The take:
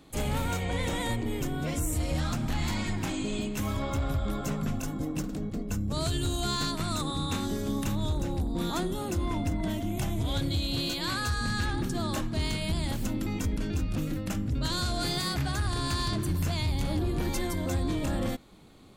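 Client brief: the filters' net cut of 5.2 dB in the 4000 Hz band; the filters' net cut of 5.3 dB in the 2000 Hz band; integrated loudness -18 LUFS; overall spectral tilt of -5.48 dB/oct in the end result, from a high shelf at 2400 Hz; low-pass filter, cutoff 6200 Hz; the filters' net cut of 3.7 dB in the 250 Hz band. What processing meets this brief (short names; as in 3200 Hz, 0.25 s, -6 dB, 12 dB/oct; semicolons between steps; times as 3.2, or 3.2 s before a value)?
LPF 6200 Hz; bell 250 Hz -5 dB; bell 2000 Hz -7.5 dB; high shelf 2400 Hz +5 dB; bell 4000 Hz -7.5 dB; gain +15 dB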